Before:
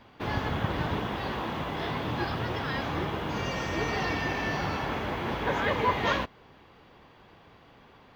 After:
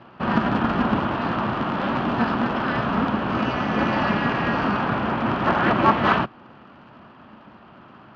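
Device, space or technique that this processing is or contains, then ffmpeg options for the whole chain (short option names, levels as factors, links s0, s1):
ring modulator pedal into a guitar cabinet: -af "aeval=exprs='val(0)*sgn(sin(2*PI*120*n/s))':c=same,highpass=93,equalizer=f=130:t=q:w=4:g=5,equalizer=f=220:t=q:w=4:g=6,equalizer=f=460:t=q:w=4:g=-7,equalizer=f=1300:t=q:w=4:g=4,equalizer=f=2100:t=q:w=4:g=-9,equalizer=f=3600:t=q:w=4:g=-9,lowpass=f=3600:w=0.5412,lowpass=f=3600:w=1.3066,volume=2.66"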